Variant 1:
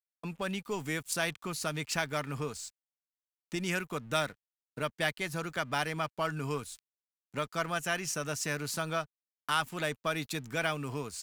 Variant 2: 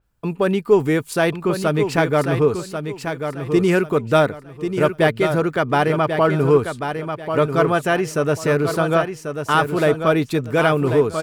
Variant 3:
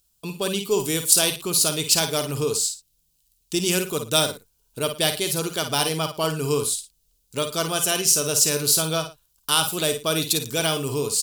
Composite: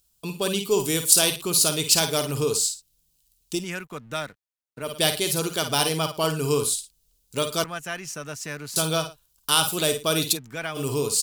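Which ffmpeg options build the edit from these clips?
-filter_complex "[0:a]asplit=3[s0][s1][s2];[2:a]asplit=4[s3][s4][s5][s6];[s3]atrim=end=3.66[s7];[s0]atrim=start=3.5:end=4.97[s8];[s4]atrim=start=4.81:end=7.642[s9];[s1]atrim=start=7.638:end=8.762[s10];[s5]atrim=start=8.758:end=10.38[s11];[s2]atrim=start=10.32:end=10.8[s12];[s6]atrim=start=10.74[s13];[s7][s8]acrossfade=d=0.16:c1=tri:c2=tri[s14];[s14][s9]acrossfade=d=0.16:c1=tri:c2=tri[s15];[s15][s10]acrossfade=d=0.004:c1=hsin:c2=hsin[s16];[s16][s11]acrossfade=d=0.004:c1=hsin:c2=hsin[s17];[s17][s12]acrossfade=d=0.06:c1=tri:c2=tri[s18];[s18][s13]acrossfade=d=0.06:c1=tri:c2=tri"

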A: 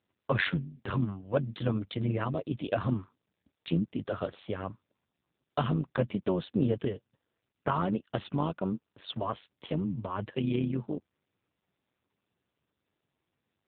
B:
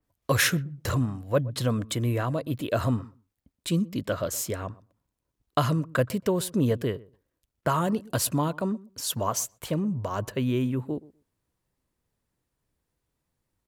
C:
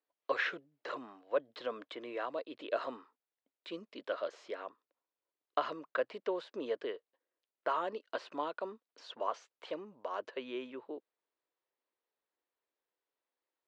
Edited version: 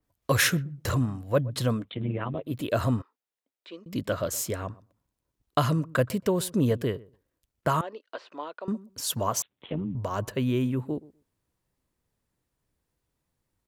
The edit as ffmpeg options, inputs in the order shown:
-filter_complex "[0:a]asplit=2[s0][s1];[2:a]asplit=2[s2][s3];[1:a]asplit=5[s4][s5][s6][s7][s8];[s4]atrim=end=1.88[s9];[s0]atrim=start=1.72:end=2.58[s10];[s5]atrim=start=2.42:end=3.022[s11];[s2]atrim=start=3.018:end=3.862[s12];[s6]atrim=start=3.858:end=7.812[s13];[s3]atrim=start=7.808:end=8.682[s14];[s7]atrim=start=8.678:end=9.422[s15];[s1]atrim=start=9.418:end=9.952[s16];[s8]atrim=start=9.948[s17];[s9][s10]acrossfade=d=0.16:c1=tri:c2=tri[s18];[s18][s11]acrossfade=d=0.16:c1=tri:c2=tri[s19];[s19][s12]acrossfade=d=0.004:c1=hsin:c2=hsin[s20];[s20][s13]acrossfade=d=0.004:c1=hsin:c2=hsin[s21];[s21][s14]acrossfade=d=0.004:c1=hsin:c2=hsin[s22];[s22][s15]acrossfade=d=0.004:c1=hsin:c2=hsin[s23];[s23][s16]acrossfade=d=0.004:c1=hsin:c2=hsin[s24];[s24][s17]acrossfade=d=0.004:c1=hsin:c2=hsin"

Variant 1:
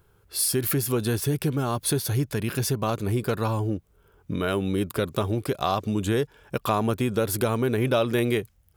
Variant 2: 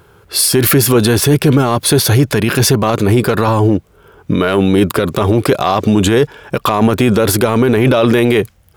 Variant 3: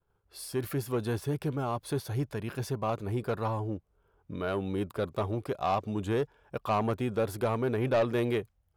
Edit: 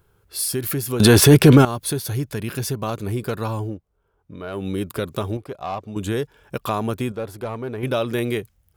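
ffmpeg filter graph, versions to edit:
-filter_complex "[2:a]asplit=3[s0][s1][s2];[0:a]asplit=5[s3][s4][s5][s6][s7];[s3]atrim=end=1.002[s8];[1:a]atrim=start=0.998:end=1.652[s9];[s4]atrim=start=1.648:end=3.79[s10];[s0]atrim=start=3.63:end=4.67[s11];[s5]atrim=start=4.51:end=5.372[s12];[s1]atrim=start=5.368:end=5.962[s13];[s6]atrim=start=5.958:end=7.122[s14];[s2]atrim=start=7.118:end=7.832[s15];[s7]atrim=start=7.828[s16];[s8][s9]acrossfade=d=0.004:c1=hsin:c2=hsin[s17];[s17][s10]acrossfade=d=0.004:c1=hsin:c2=hsin[s18];[s18][s11]acrossfade=d=0.16:c1=tri:c2=tri[s19];[s19][s12]acrossfade=d=0.16:c1=tri:c2=tri[s20];[s20][s13]acrossfade=d=0.004:c1=hsin:c2=hsin[s21];[s21][s14]acrossfade=d=0.004:c1=hsin:c2=hsin[s22];[s22][s15]acrossfade=d=0.004:c1=hsin:c2=hsin[s23];[s23][s16]acrossfade=d=0.004:c1=hsin:c2=hsin"

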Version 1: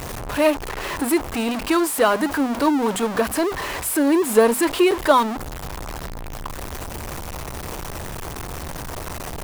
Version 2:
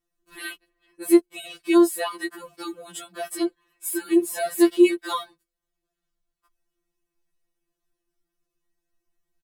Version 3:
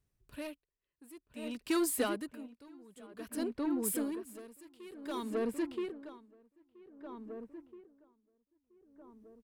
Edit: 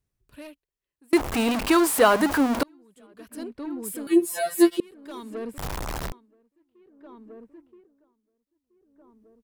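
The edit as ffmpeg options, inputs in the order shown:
-filter_complex "[0:a]asplit=2[s0][s1];[2:a]asplit=4[s2][s3][s4][s5];[s2]atrim=end=1.132[s6];[s0]atrim=start=1.128:end=2.632[s7];[s3]atrim=start=2.628:end=4.072[s8];[1:a]atrim=start=4.068:end=4.802[s9];[s4]atrim=start=4.798:end=5.582[s10];[s1]atrim=start=5.578:end=6.122[s11];[s5]atrim=start=6.118[s12];[s6][s7]acrossfade=d=0.004:c1=hsin:c2=hsin[s13];[s13][s8]acrossfade=d=0.004:c1=hsin:c2=hsin[s14];[s14][s9]acrossfade=d=0.004:c1=hsin:c2=hsin[s15];[s15][s10]acrossfade=d=0.004:c1=hsin:c2=hsin[s16];[s16][s11]acrossfade=d=0.004:c1=hsin:c2=hsin[s17];[s17][s12]acrossfade=d=0.004:c1=hsin:c2=hsin"

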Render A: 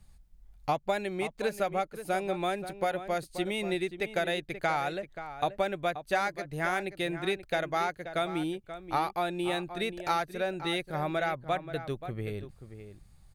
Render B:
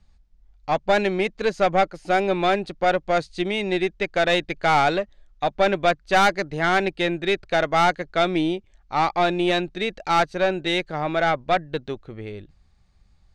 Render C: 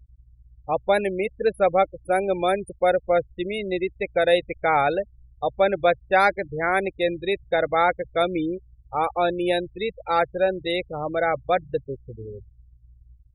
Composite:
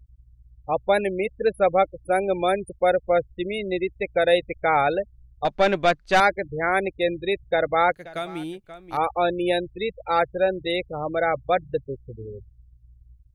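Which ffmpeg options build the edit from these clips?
-filter_complex "[2:a]asplit=3[s0][s1][s2];[s0]atrim=end=5.452[s3];[1:a]atrim=start=5.448:end=6.202[s4];[s1]atrim=start=6.198:end=7.922[s5];[0:a]atrim=start=7.918:end=8.972[s6];[s2]atrim=start=8.968[s7];[s3][s4]acrossfade=d=0.004:c1=hsin:c2=hsin[s8];[s8][s5]acrossfade=d=0.004:c1=hsin:c2=hsin[s9];[s9][s6]acrossfade=d=0.004:c1=hsin:c2=hsin[s10];[s10][s7]acrossfade=d=0.004:c1=hsin:c2=hsin"

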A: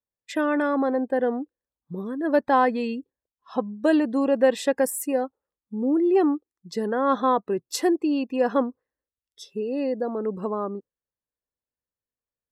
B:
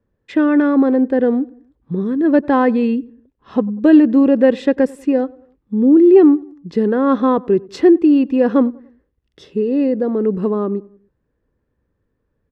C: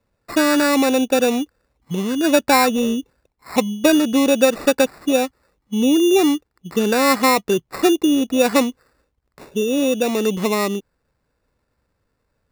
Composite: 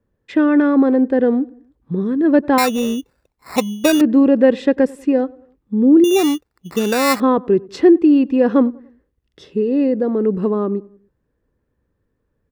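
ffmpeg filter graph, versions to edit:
-filter_complex "[2:a]asplit=2[s0][s1];[1:a]asplit=3[s2][s3][s4];[s2]atrim=end=2.582[s5];[s0]atrim=start=2.578:end=4.012[s6];[s3]atrim=start=4.008:end=6.042[s7];[s1]atrim=start=6.038:end=7.202[s8];[s4]atrim=start=7.198[s9];[s5][s6]acrossfade=d=0.004:c1=hsin:c2=hsin[s10];[s10][s7]acrossfade=d=0.004:c1=hsin:c2=hsin[s11];[s11][s8]acrossfade=d=0.004:c1=hsin:c2=hsin[s12];[s12][s9]acrossfade=d=0.004:c1=hsin:c2=hsin"

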